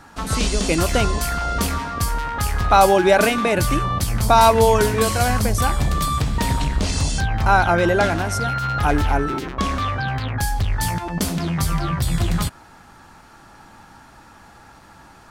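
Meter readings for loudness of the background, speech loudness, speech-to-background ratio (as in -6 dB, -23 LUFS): -23.0 LUFS, -19.0 LUFS, 4.0 dB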